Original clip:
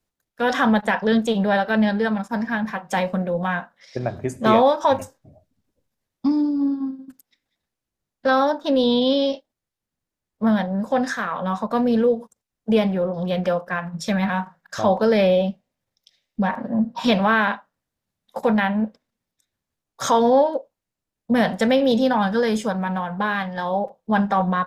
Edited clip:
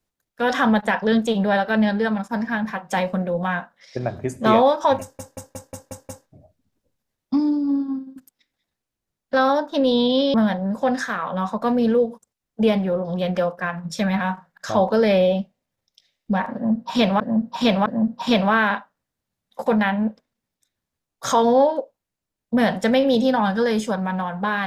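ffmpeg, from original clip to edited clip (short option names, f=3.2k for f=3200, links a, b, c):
-filter_complex "[0:a]asplit=10[a][b][c][d][e][f][g][h][i][j];[a]atrim=end=5.192[k];[b]atrim=start=5.008:end=5.192[l];[c]atrim=start=5.008:end=5.192[m];[d]atrim=start=5.008:end=5.192[n];[e]atrim=start=5.008:end=5.192[o];[f]atrim=start=5.008:end=5.192[p];[g]atrim=start=5.008:end=9.262[q];[h]atrim=start=10.428:end=17.292[r];[i]atrim=start=16.628:end=17.292[s];[j]atrim=start=16.628[t];[k][l]acrossfade=d=0.004:c1=hsin:c2=hsin[u];[u][m]acrossfade=d=0.004:c1=hsin:c2=hsin[v];[v][n]acrossfade=d=0.004:c1=hsin:c2=hsin[w];[w][o]acrossfade=d=0.004:c1=hsin:c2=hsin[x];[x][p]acrossfade=d=0.004:c1=hsin:c2=hsin[y];[y][q]acrossfade=d=0.004:c1=hsin:c2=hsin[z];[z][r]acrossfade=d=0.004:c1=hsin:c2=hsin[aa];[aa][s]acrossfade=d=0.004:c1=hsin:c2=hsin[ab];[ab][t]acrossfade=d=0.004:c1=hsin:c2=hsin"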